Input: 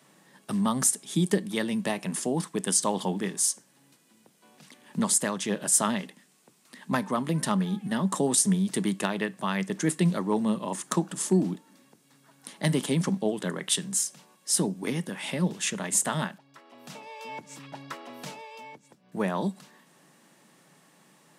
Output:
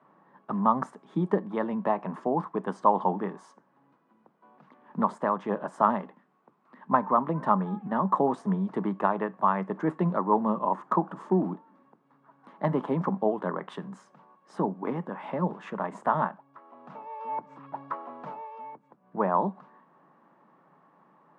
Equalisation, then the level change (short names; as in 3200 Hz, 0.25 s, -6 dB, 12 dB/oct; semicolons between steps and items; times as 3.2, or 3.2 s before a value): dynamic EQ 770 Hz, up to +5 dB, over -43 dBFS, Q 0.89; HPF 140 Hz; synth low-pass 1100 Hz, resonance Q 2.6; -2.5 dB